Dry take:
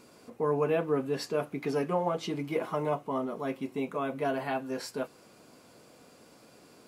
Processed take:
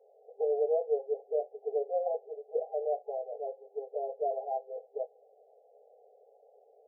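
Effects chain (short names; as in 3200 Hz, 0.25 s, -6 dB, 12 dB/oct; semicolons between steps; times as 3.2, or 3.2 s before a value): FFT band-pass 400–830 Hz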